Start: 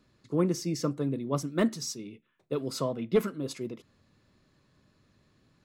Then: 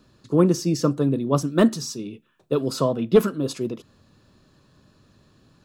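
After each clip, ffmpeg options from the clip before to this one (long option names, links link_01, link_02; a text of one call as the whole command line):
ffmpeg -i in.wav -filter_complex "[0:a]equalizer=frequency=2100:width=6.1:gain=-12,acrossover=split=2900[link_01][link_02];[link_02]alimiter=level_in=9dB:limit=-24dB:level=0:latency=1,volume=-9dB[link_03];[link_01][link_03]amix=inputs=2:normalize=0,volume=9dB" out.wav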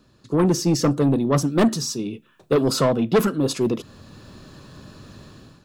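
ffmpeg -i in.wav -af "dynaudnorm=framelen=180:gausssize=5:maxgain=14dB,asoftclip=type=tanh:threshold=-12dB" out.wav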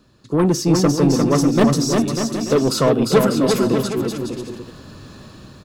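ffmpeg -i in.wav -af "aecho=1:1:350|595|766.5|886.6|970.6:0.631|0.398|0.251|0.158|0.1,volume=2dB" out.wav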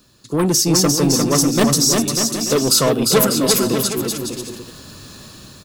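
ffmpeg -i in.wav -af "crystalizer=i=4:c=0,volume=-1.5dB" out.wav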